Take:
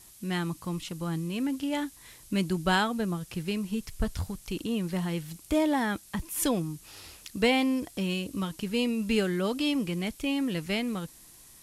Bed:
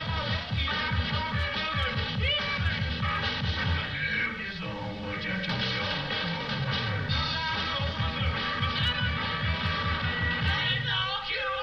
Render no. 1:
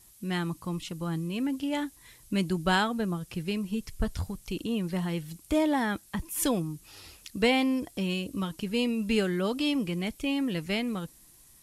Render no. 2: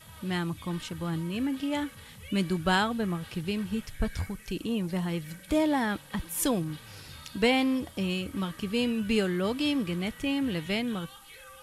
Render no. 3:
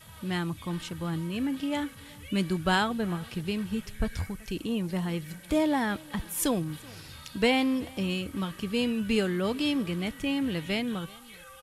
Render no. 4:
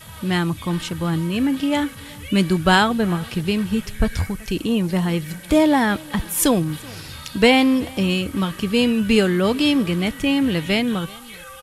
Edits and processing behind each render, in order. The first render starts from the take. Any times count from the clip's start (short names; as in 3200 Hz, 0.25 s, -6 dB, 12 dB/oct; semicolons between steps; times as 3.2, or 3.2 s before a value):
denoiser 6 dB, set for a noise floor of -53 dBFS
add bed -19.5 dB
echo 0.38 s -23.5 dB
gain +10 dB